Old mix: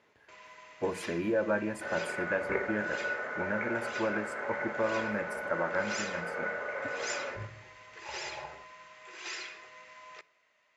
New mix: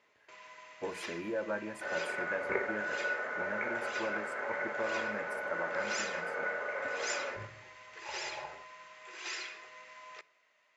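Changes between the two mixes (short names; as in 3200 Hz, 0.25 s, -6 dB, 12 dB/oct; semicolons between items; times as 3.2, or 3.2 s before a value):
speech -5.5 dB; master: add low shelf 180 Hz -8.5 dB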